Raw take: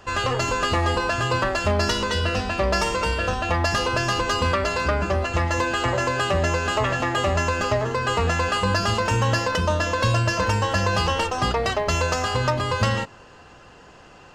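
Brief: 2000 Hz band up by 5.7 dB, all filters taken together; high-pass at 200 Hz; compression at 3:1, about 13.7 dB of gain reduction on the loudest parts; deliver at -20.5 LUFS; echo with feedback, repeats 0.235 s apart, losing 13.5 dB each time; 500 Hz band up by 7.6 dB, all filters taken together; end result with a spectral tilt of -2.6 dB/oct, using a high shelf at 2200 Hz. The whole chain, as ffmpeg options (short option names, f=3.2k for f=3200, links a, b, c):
-af "highpass=200,equalizer=f=500:t=o:g=8.5,equalizer=f=2k:t=o:g=4,highshelf=f=2.2k:g=5.5,acompressor=threshold=-33dB:ratio=3,aecho=1:1:235|470:0.211|0.0444,volume=10dB"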